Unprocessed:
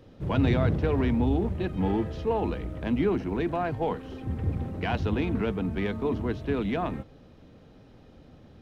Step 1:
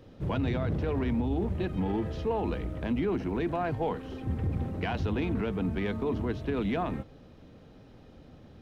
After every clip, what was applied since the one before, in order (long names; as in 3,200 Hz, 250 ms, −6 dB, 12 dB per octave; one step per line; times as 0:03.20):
brickwall limiter −21.5 dBFS, peak gain reduction 8.5 dB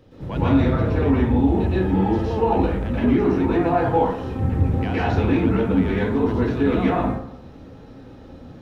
dense smooth reverb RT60 0.71 s, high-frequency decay 0.45×, pre-delay 105 ms, DRR −9.5 dB